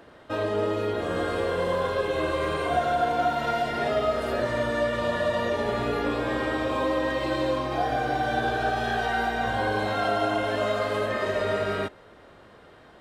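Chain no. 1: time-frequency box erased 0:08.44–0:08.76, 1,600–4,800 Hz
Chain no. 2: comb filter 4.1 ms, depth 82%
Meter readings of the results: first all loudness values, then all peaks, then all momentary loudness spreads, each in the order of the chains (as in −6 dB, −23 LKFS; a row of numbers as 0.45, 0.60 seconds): −26.5, −24.0 LKFS; −12.0, −9.0 dBFS; 2, 5 LU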